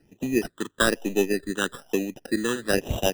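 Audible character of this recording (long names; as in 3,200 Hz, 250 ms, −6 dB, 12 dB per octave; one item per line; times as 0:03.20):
aliases and images of a low sample rate 2,200 Hz, jitter 0%
phaser sweep stages 8, 1.1 Hz, lowest notch 680–1,500 Hz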